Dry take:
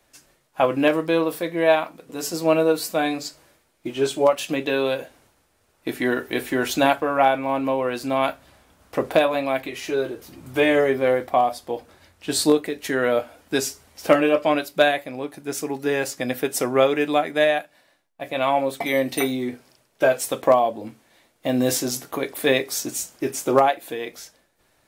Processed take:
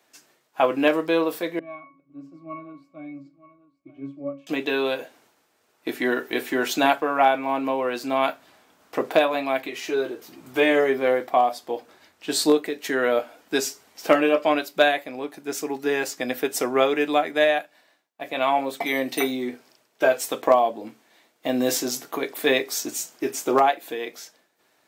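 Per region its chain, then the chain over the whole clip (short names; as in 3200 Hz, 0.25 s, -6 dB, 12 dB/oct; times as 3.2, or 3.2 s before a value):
1.59–4.47 low shelf 150 Hz +10.5 dB + octave resonator C#, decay 0.31 s + echo 0.927 s -16.5 dB
whole clip: HPF 240 Hz 12 dB/oct; bell 10000 Hz -7 dB 0.33 oct; notch 550 Hz, Q 12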